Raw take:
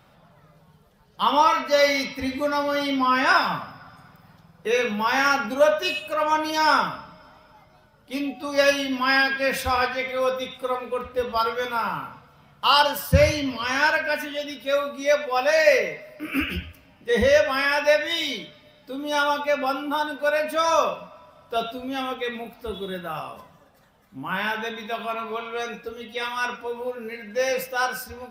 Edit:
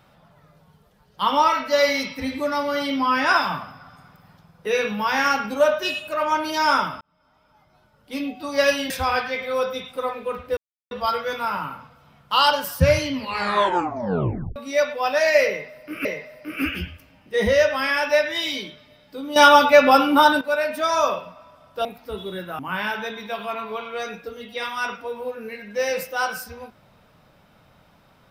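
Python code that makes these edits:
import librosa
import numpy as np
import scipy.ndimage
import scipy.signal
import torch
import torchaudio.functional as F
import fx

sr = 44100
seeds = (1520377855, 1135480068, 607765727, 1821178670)

y = fx.edit(x, sr, fx.fade_in_span(start_s=7.01, length_s=1.18),
    fx.cut(start_s=8.9, length_s=0.66),
    fx.insert_silence(at_s=11.23, length_s=0.34),
    fx.tape_stop(start_s=13.46, length_s=1.42),
    fx.repeat(start_s=15.8, length_s=0.57, count=2),
    fx.clip_gain(start_s=19.11, length_s=1.05, db=10.5),
    fx.cut(start_s=21.6, length_s=0.81),
    fx.cut(start_s=23.15, length_s=1.04), tone=tone)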